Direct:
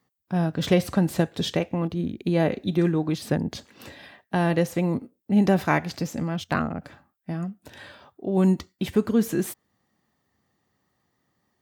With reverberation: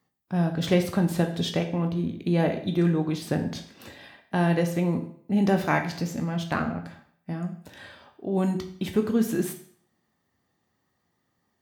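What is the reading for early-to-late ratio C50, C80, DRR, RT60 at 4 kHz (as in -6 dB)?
10.0 dB, 13.0 dB, 5.0 dB, 0.55 s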